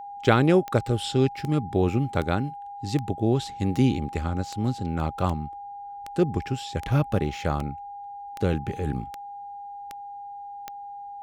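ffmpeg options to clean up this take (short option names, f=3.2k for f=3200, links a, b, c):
-af "adeclick=t=4,bandreject=f=810:w=30"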